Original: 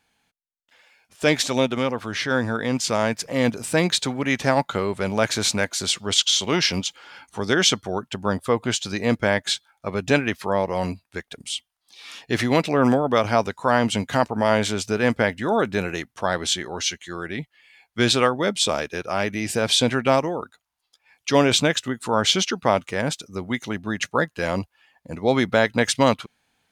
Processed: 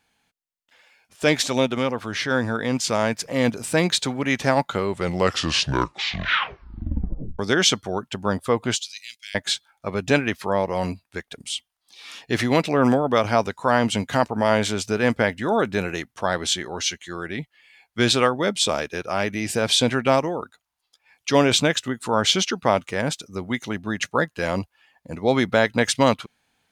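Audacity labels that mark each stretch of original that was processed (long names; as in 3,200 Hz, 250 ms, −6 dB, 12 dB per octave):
4.850000	4.850000	tape stop 2.54 s
8.760000	9.350000	inverse Chebyshev high-pass filter stop band from 1,100 Hz, stop band 50 dB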